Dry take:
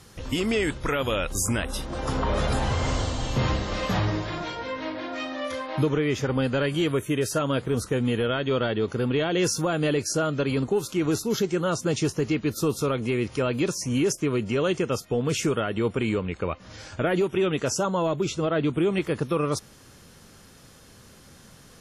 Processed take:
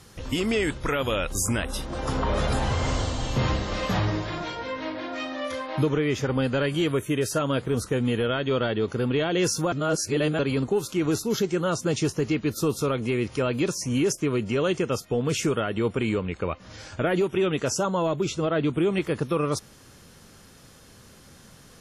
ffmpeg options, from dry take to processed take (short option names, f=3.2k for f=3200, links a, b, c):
-filter_complex "[0:a]asplit=3[a][b][c];[a]atrim=end=9.722[d];[b]atrim=start=9.718:end=10.392,asetpts=PTS-STARTPTS,areverse[e];[c]atrim=start=10.388[f];[d][e]acrossfade=d=0.004:c1=hsin:c2=hsin[g];[g][f]acrossfade=d=0.004:c1=hsin:c2=hsin"